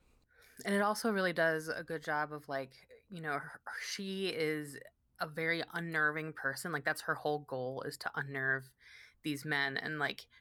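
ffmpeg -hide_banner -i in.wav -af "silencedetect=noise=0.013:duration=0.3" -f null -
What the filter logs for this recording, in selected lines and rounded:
silence_start: 0.00
silence_end: 0.59 | silence_duration: 0.59
silence_start: 2.63
silence_end: 3.14 | silence_duration: 0.50
silence_start: 4.78
silence_end: 5.21 | silence_duration: 0.43
silence_start: 8.59
silence_end: 9.26 | silence_duration: 0.67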